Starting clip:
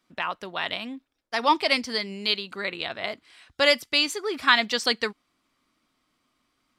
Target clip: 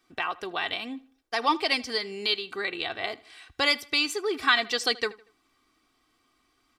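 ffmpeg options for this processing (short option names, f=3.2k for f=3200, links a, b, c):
-filter_complex "[0:a]aecho=1:1:2.6:0.58,asplit=2[a][b];[b]acompressor=threshold=-33dB:ratio=6,volume=2.5dB[c];[a][c]amix=inputs=2:normalize=0,asplit=2[d][e];[e]adelay=79,lowpass=f=4.2k:p=1,volume=-20.5dB,asplit=2[f][g];[g]adelay=79,lowpass=f=4.2k:p=1,volume=0.4,asplit=2[h][i];[i]adelay=79,lowpass=f=4.2k:p=1,volume=0.4[j];[d][f][h][j]amix=inputs=4:normalize=0,volume=-5.5dB"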